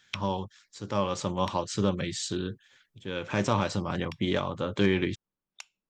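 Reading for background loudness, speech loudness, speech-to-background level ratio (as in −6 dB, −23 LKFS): −46.5 LKFS, −30.0 LKFS, 16.5 dB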